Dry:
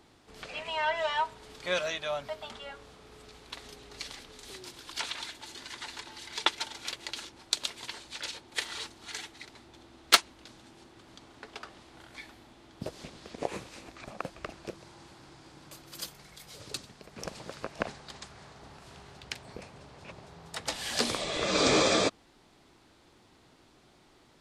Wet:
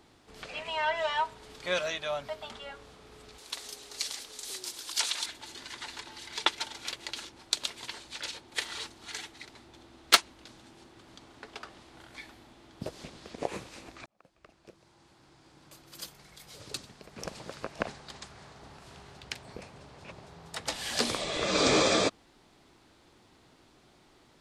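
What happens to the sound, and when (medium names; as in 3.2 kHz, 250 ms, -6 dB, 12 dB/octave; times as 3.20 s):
3.38–5.26 s: tone controls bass -11 dB, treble +12 dB
14.06–16.84 s: fade in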